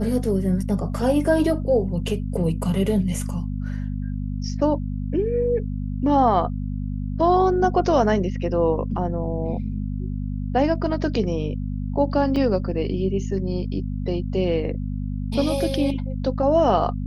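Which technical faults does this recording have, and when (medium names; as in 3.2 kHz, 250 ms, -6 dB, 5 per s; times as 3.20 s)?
hum 50 Hz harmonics 5 -27 dBFS
12.36 s: dropout 4.6 ms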